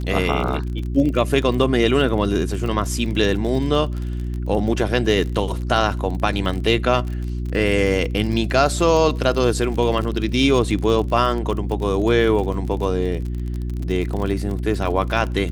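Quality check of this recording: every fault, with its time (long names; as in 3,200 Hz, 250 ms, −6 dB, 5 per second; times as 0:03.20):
surface crackle 38 per second −26 dBFS
mains hum 60 Hz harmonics 6 −25 dBFS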